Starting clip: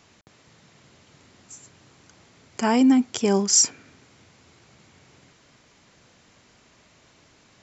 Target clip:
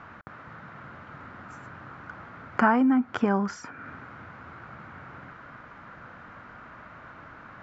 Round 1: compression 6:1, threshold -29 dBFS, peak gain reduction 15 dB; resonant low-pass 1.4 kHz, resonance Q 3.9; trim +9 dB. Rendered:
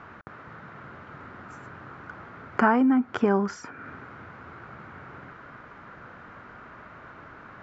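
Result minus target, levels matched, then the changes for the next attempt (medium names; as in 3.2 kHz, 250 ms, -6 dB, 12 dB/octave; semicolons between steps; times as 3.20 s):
500 Hz band +2.5 dB
add after resonant low-pass: peaking EQ 400 Hz -6 dB 0.45 oct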